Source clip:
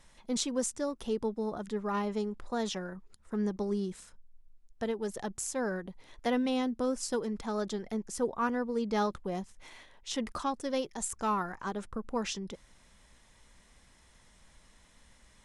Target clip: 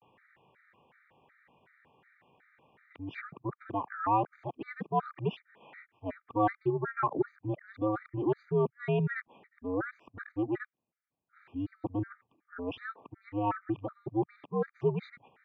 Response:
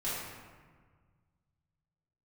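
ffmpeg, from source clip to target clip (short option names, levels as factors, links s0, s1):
-af "areverse,highpass=f=260:t=q:w=0.5412,highpass=f=260:t=q:w=1.307,lowpass=f=2600:t=q:w=0.5176,lowpass=f=2600:t=q:w=0.7071,lowpass=f=2600:t=q:w=1.932,afreqshift=-97,acontrast=24,afftfilt=real='re*gt(sin(2*PI*2.7*pts/sr)*(1-2*mod(floor(b*sr/1024/1200),2)),0)':imag='im*gt(sin(2*PI*2.7*pts/sr)*(1-2*mod(floor(b*sr/1024/1200),2)),0)':win_size=1024:overlap=0.75"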